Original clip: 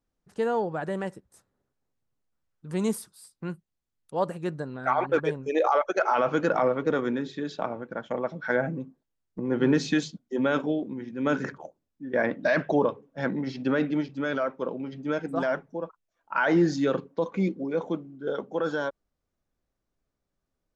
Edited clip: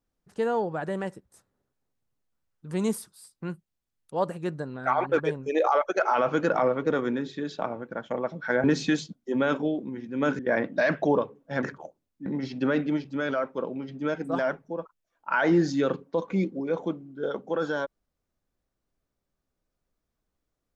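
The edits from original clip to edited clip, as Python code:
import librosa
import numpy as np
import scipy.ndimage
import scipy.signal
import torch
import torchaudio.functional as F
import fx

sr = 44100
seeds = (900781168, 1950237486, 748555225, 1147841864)

y = fx.edit(x, sr, fx.cut(start_s=8.64, length_s=1.04),
    fx.move(start_s=11.43, length_s=0.63, to_s=13.3), tone=tone)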